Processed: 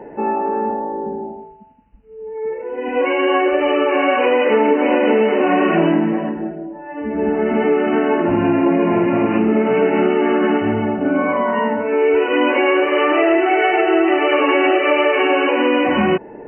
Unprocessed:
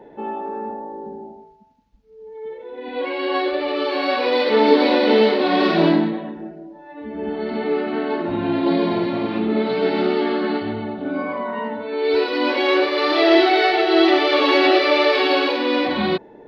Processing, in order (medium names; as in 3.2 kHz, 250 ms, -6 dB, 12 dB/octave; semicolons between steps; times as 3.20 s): compression, threshold -20 dBFS, peak gain reduction 11.5 dB; brick-wall FIR low-pass 3 kHz; trim +8.5 dB